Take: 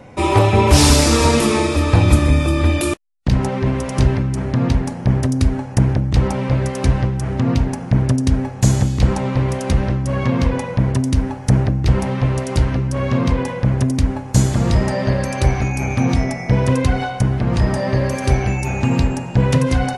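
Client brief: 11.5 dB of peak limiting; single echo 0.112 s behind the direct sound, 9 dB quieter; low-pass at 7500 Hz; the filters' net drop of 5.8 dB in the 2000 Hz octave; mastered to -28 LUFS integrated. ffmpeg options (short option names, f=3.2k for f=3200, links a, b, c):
-af "lowpass=7.5k,equalizer=f=2k:t=o:g=-7.5,alimiter=limit=-13.5dB:level=0:latency=1,aecho=1:1:112:0.355,volume=-5.5dB"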